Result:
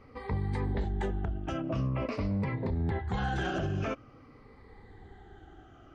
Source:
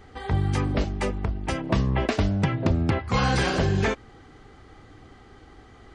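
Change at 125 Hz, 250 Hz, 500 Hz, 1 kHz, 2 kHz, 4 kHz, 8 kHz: −7.5 dB, −7.5 dB, −8.0 dB, −8.5 dB, −9.5 dB, −13.0 dB, below −15 dB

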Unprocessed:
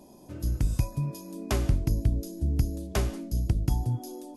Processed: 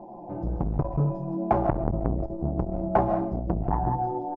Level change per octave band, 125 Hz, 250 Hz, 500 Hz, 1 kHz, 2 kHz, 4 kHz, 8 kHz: −1.0 dB, +5.5 dB, +10.5 dB, +16.0 dB, −1.0 dB, below −20 dB, below −30 dB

